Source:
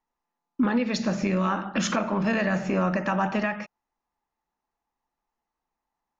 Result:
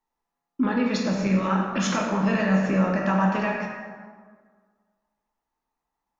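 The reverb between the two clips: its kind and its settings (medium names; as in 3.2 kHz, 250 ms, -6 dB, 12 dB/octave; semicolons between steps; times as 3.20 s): plate-style reverb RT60 1.7 s, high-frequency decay 0.55×, DRR -0.5 dB; trim -2 dB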